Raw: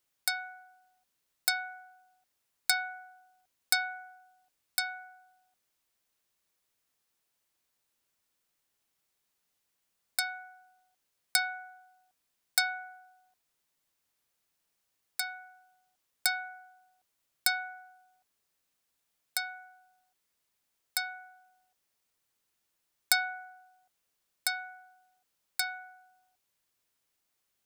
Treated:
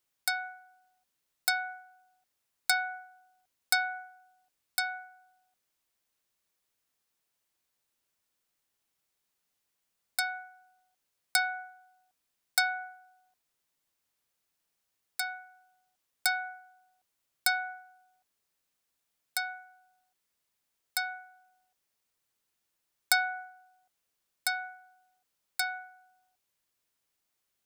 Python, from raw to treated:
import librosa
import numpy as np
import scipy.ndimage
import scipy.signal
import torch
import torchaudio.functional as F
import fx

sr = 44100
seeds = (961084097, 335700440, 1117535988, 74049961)

y = fx.dynamic_eq(x, sr, hz=940.0, q=0.72, threshold_db=-46.0, ratio=4.0, max_db=6)
y = y * librosa.db_to_amplitude(-1.5)